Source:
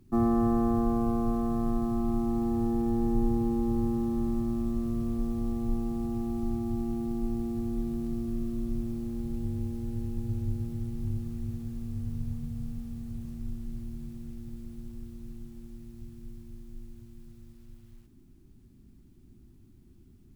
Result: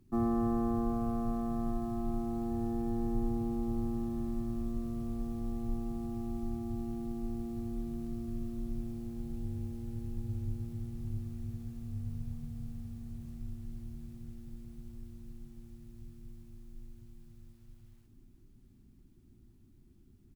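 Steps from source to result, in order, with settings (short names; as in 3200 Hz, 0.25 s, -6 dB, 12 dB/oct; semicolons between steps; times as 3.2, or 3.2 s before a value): on a send: feedback echo 0.79 s, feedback 59%, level -12.5 dB; on the sum: gain -5.5 dB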